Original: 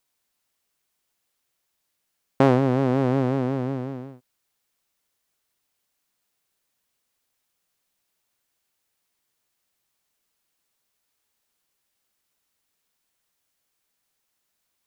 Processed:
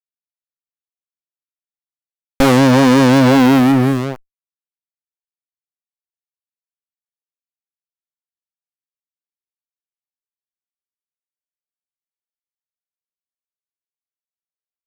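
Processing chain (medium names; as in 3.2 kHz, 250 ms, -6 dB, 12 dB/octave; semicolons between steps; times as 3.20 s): fuzz box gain 35 dB, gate -39 dBFS; Chebyshev shaper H 5 -16 dB, 6 -17 dB, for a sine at -8.5 dBFS; trim +4.5 dB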